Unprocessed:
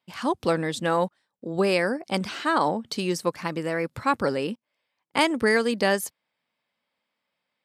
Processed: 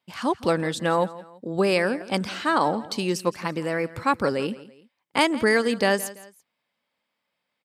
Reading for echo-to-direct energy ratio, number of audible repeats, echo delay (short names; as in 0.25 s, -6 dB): -17.5 dB, 2, 0.168 s